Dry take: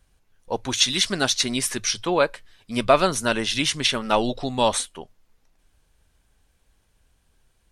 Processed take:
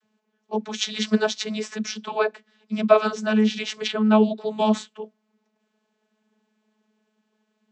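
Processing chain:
0:03.87–0:04.50: parametric band 5,900 Hz −13 dB 0.36 octaves
channel vocoder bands 32, saw 215 Hz
level +1.5 dB

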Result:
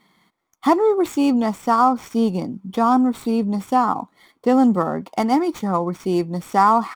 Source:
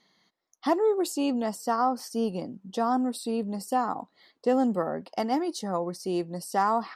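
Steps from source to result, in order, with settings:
running median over 9 samples
comb filter 0.9 ms, depth 42%
level +9 dB

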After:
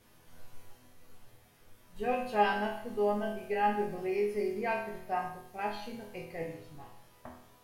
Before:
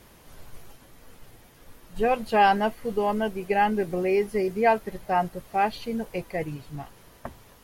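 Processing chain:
0:05.19–0:05.59: parametric band 1,200 Hz −9 dB 1.6 octaves
resonators tuned to a chord E2 major, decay 0.69 s
level +8 dB

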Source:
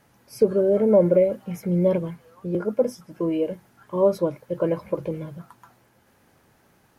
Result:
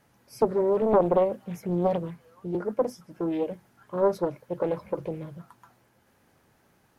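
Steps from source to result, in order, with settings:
highs frequency-modulated by the lows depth 0.59 ms
level −4 dB

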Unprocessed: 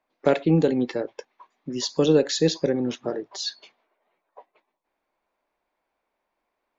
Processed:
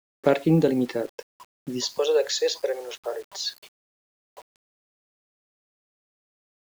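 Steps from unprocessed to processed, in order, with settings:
0:01.98–0:03.37: Butterworth high-pass 430 Hz 48 dB per octave
bit-depth reduction 8 bits, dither none

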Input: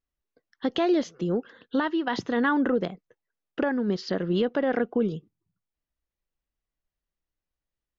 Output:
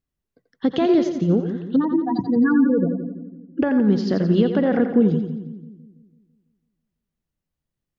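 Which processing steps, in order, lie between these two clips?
0:01.76–0:03.62: expanding power law on the bin magnitudes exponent 3.8
parametric band 140 Hz +13 dB 2.3 octaves
mains-hum notches 60/120/180 Hz
on a send: echo with a time of its own for lows and highs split 350 Hz, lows 166 ms, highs 87 ms, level −8 dB

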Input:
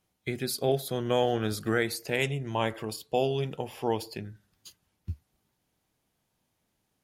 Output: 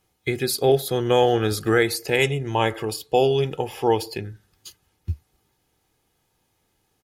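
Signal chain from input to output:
comb filter 2.4 ms, depth 41%
level +7 dB

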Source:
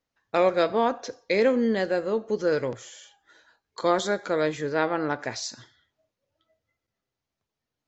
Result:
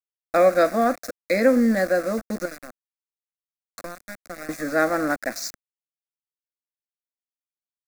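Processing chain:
0:02.45–0:04.49: downward compressor 5 to 1, threshold −37 dBFS, peak gain reduction 18 dB
centre clipping without the shift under −33.5 dBFS
phaser with its sweep stopped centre 620 Hz, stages 8
level +6.5 dB

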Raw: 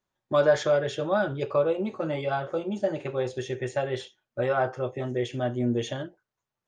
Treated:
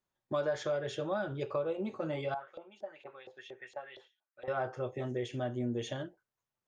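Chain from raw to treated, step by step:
downward compressor 2.5 to 1, threshold −27 dBFS, peak gain reduction 8.5 dB
0:02.34–0:04.48: auto-filter band-pass saw up 4.3 Hz 650–3,700 Hz
level −5 dB

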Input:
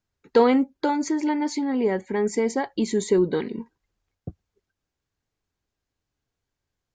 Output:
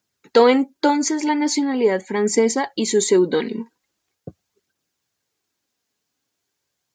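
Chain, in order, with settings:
high-pass filter 170 Hz 12 dB per octave
high-shelf EQ 3,200 Hz +9.5 dB
phase shifter 0.42 Hz, delay 4.8 ms, feedback 32%
level +4 dB

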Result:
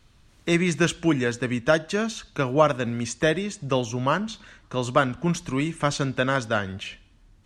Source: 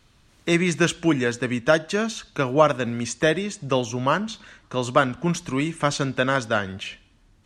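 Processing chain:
low-shelf EQ 100 Hz +6.5 dB
level −2 dB

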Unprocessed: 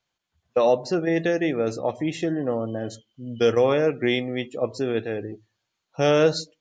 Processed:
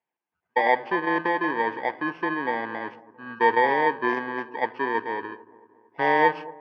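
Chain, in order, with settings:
samples in bit-reversed order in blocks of 32 samples
loudspeaker in its box 330–2,600 Hz, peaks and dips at 570 Hz −6 dB, 930 Hz +9 dB, 1,600 Hz +9 dB
delay with a low-pass on its return 225 ms, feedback 53%, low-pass 940 Hz, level −18 dB

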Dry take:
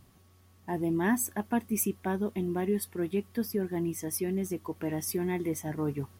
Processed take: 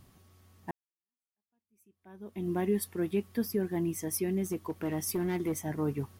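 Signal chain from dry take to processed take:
0:00.71–0:02.49: fade in exponential
0:04.43–0:05.60: hard clipping −26 dBFS, distortion −26 dB

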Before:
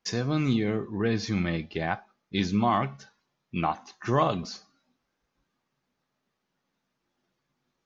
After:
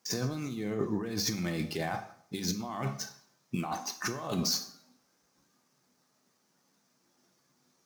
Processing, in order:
running median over 5 samples
high-pass filter 120 Hz 12 dB per octave
high shelf with overshoot 4,400 Hz +11 dB, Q 1.5
compressor whose output falls as the input rises −34 dBFS, ratio −1
on a send: convolution reverb RT60 0.65 s, pre-delay 17 ms, DRR 9.5 dB

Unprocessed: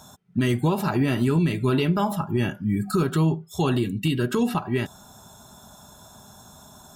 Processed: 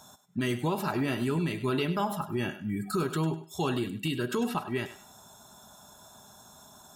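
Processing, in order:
low-shelf EQ 210 Hz −8.5 dB
on a send: feedback echo with a high-pass in the loop 100 ms, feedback 23%, high-pass 420 Hz, level −12 dB
on the sum: level −4 dB

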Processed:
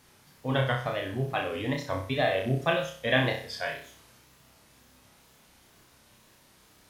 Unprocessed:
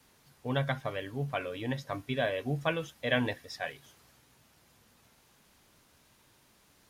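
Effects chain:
tape wow and flutter 130 cents
flutter between parallel walls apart 5.4 metres, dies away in 0.46 s
level +3 dB

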